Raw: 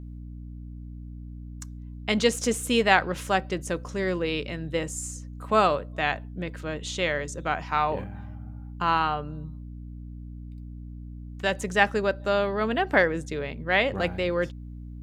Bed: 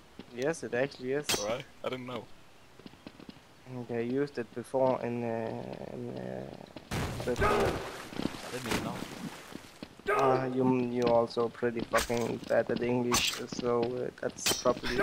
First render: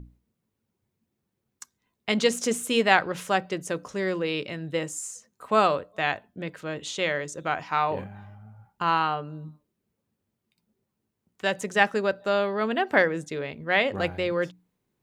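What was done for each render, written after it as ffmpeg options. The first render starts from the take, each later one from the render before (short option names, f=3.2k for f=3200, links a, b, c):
-af "bandreject=f=60:t=h:w=6,bandreject=f=120:t=h:w=6,bandreject=f=180:t=h:w=6,bandreject=f=240:t=h:w=6,bandreject=f=300:t=h:w=6"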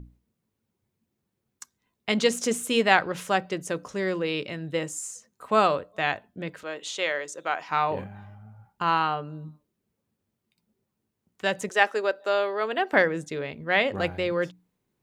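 -filter_complex "[0:a]asettb=1/sr,asplit=3[a][b][c];[a]atrim=end=6.634[d];[b]atrim=start=6.63:end=7.69,asetpts=PTS-STARTPTS,afade=t=in:d=0.004:c=qsin,afade=t=out:st=1.056:d=0.004:c=qsin,highpass=410[e];[c]atrim=start=7.686[f];[d][e]acrossfade=d=0.004:c1=hsin:c2=qsin[g];[g][f]acrossfade=d=0.004:c1=qsin:c2=hsin,asettb=1/sr,asplit=3[h][i][j];[h]atrim=end=11.694[k];[i]atrim=start=11.69:end=12.93,asetpts=PTS-STARTPTS,afade=t=in:d=0.004:c=qsin,afade=t=out:st=1.236:d=0.004:c=qsin,highpass=f=320:w=0.5412,highpass=f=320:w=1.3066[l];[j]atrim=start=12.926[m];[k][l]acrossfade=d=0.004:c1=hsin:c2=qsin[n];[n][m]acrossfade=d=0.004:c1=qsin:c2=hsin"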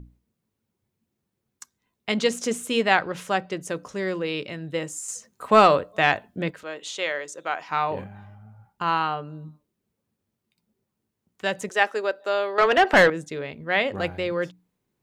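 -filter_complex "[0:a]asettb=1/sr,asplit=3[a][b][c];[a]atrim=end=2.124[d];[b]atrim=start=2.12:end=3.63,asetpts=PTS-STARTPTS,afade=t=in:d=0.004:c=qsin,afade=t=out:st=1.506:d=0.004:c=qsin,highshelf=f=9.2k:g=-5[e];[c]atrim=start=3.626[f];[d][e]acrossfade=d=0.004:c1=hsin:c2=qsin[g];[g][f]acrossfade=d=0.004:c1=qsin:c2=hsin,asettb=1/sr,asplit=3[h][i][j];[h]atrim=end=5.084[k];[i]atrim=start=5.08:end=6.51,asetpts=PTS-STARTPTS,afade=t=in:d=0.004:c=qsin,afade=t=out:st=1.426:d=0.004:c=qsin,acontrast=72[l];[j]atrim=start=6.506[m];[k][l]acrossfade=d=0.004:c1=hsin:c2=qsin[n];[n][m]acrossfade=d=0.004:c1=qsin:c2=hsin,asettb=1/sr,asplit=3[o][p][q];[o]atrim=end=12.584[r];[p]atrim=start=12.58:end=13.1,asetpts=PTS-STARTPTS,afade=t=in:d=0.004:c=qsin,afade=t=out:st=0.516:d=0.004:c=qsin,asplit=2[s][t];[t]highpass=f=720:p=1,volume=22dB,asoftclip=type=tanh:threshold=-6.5dB[u];[s][u]amix=inputs=2:normalize=0,lowpass=f=2.7k:p=1,volume=-6dB[v];[q]atrim=start=13.096[w];[r][v]acrossfade=d=0.004:c1=hsin:c2=qsin[x];[x][w]acrossfade=d=0.004:c1=qsin:c2=hsin"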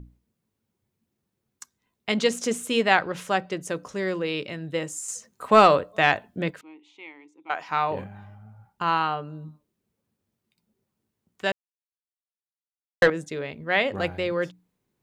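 -filter_complex "[0:a]asettb=1/sr,asplit=3[a][b][c];[a]atrim=end=6.614[d];[b]atrim=start=6.61:end=7.5,asetpts=PTS-STARTPTS,afade=t=in:d=0.004:c=qsin,afade=t=out:st=0.886:d=0.004:c=qsin,asplit=3[e][f][g];[e]bandpass=f=300:t=q:w=8,volume=0dB[h];[f]bandpass=f=870:t=q:w=8,volume=-6dB[i];[g]bandpass=f=2.24k:t=q:w=8,volume=-9dB[j];[h][i][j]amix=inputs=3:normalize=0[k];[c]atrim=start=7.496[l];[d][k]acrossfade=d=0.004:c1=hsin:c2=qsin[m];[m][l]acrossfade=d=0.004:c1=qsin:c2=hsin,asplit=3[n][o][p];[n]atrim=end=11.52,asetpts=PTS-STARTPTS,afade=t=out:st=11.516:d=0.004:c=hsin[q];[o]atrim=start=11.52:end=13.02,asetpts=PTS-STARTPTS,volume=0[r];[p]atrim=start=13.02,asetpts=PTS-STARTPTS,afade=t=in:d=0.004:c=hsin[s];[q][r][s]concat=n=3:v=0:a=1"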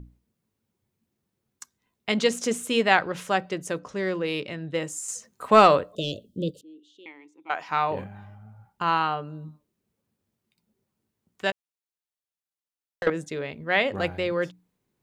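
-filter_complex "[0:a]asettb=1/sr,asplit=3[a][b][c];[a]atrim=end=3.794[d];[b]atrim=start=3.79:end=4.77,asetpts=PTS-STARTPTS,afade=t=in:d=0.004:c=qsin,afade=t=out:st=0.976:d=0.004:c=qsin,adynamicsmooth=sensitivity=4:basefreq=6.7k[e];[c]atrim=start=4.766[f];[d][e]acrossfade=d=0.004:c1=hsin:c2=qsin[g];[g][f]acrossfade=d=0.004:c1=qsin:c2=hsin,asettb=1/sr,asplit=3[h][i][j];[h]atrim=end=5.954[k];[i]atrim=start=5.95:end=7.06,asetpts=PTS-STARTPTS,afade=t=in:d=0.004:c=qsin,afade=t=out:st=1.106:d=0.004:c=qsin,asuperstop=centerf=1300:order=20:qfactor=0.55[l];[j]atrim=start=7.056[m];[k][l]acrossfade=d=0.004:c1=hsin:c2=qsin[n];[n][m]acrossfade=d=0.004:c1=qsin:c2=hsin,asettb=1/sr,asplit=3[o][p][q];[o]atrim=end=11.504[r];[p]atrim=start=11.5:end=13.07,asetpts=PTS-STARTPTS,afade=t=in:d=0.004:c=qsin,afade=t=out:st=1.566:d=0.004:c=qsin,acompressor=threshold=-30dB:ratio=6:attack=3.2:release=140:knee=1:detection=peak[s];[q]atrim=start=13.066[t];[r][s]acrossfade=d=0.004:c1=hsin:c2=qsin[u];[u][t]acrossfade=d=0.004:c1=qsin:c2=hsin"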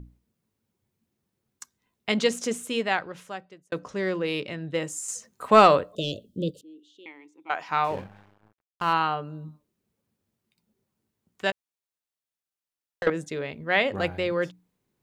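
-filter_complex "[0:a]asettb=1/sr,asplit=3[a][b][c];[a]atrim=end=7.844[d];[b]atrim=start=7.84:end=8.93,asetpts=PTS-STARTPTS,afade=t=in:d=0.004:c=qsin,afade=t=out:st=1.086:d=0.004:c=qsin,aeval=exprs='sgn(val(0))*max(abs(val(0))-0.00631,0)':c=same[e];[c]atrim=start=8.926[f];[d][e]acrossfade=d=0.004:c1=hsin:c2=qsin[g];[g][f]acrossfade=d=0.004:c1=qsin:c2=hsin,asplit=2[h][i];[h]atrim=end=3.72,asetpts=PTS-STARTPTS,afade=t=out:st=2.12:d=1.6[j];[i]atrim=start=3.72,asetpts=PTS-STARTPTS,afade=t=in:d=0.004:c=hsin[k];[j][k]concat=n=2:v=0:a=1"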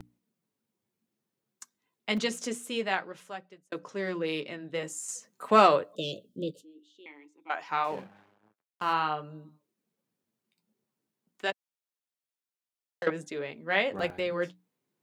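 -filter_complex "[0:a]flanger=delay=1.9:depth=9.2:regen=-48:speed=0.52:shape=triangular,acrossover=split=130|3600[a][b][c];[a]acrusher=bits=4:dc=4:mix=0:aa=0.000001[d];[d][b][c]amix=inputs=3:normalize=0"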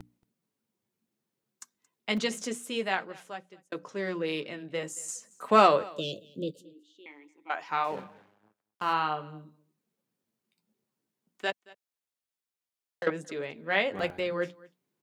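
-af "aecho=1:1:225:0.0708"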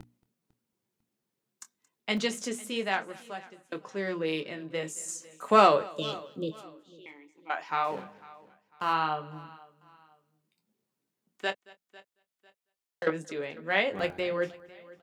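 -filter_complex "[0:a]asplit=2[a][b];[b]adelay=25,volume=-12dB[c];[a][c]amix=inputs=2:normalize=0,aecho=1:1:499|998:0.0841|0.0286"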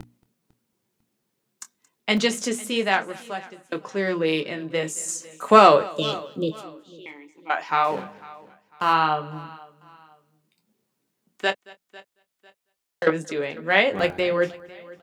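-af "volume=8dB,alimiter=limit=-1dB:level=0:latency=1"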